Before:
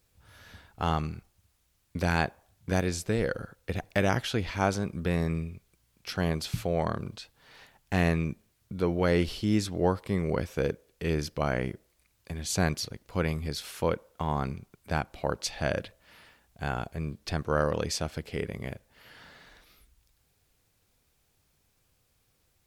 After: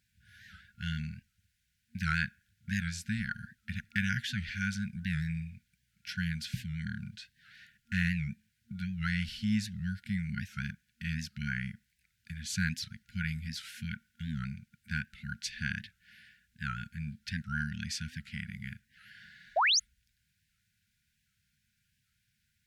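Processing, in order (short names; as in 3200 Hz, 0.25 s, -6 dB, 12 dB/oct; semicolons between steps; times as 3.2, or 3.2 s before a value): HPF 98 Hz 6 dB/oct; FFT band-reject 230–1400 Hz; EQ curve 180 Hz 0 dB, 440 Hz +9 dB, 13000 Hz -7 dB; painted sound rise, 19.56–19.8, 570–7700 Hz -23 dBFS; record warp 78 rpm, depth 160 cents; gain -2.5 dB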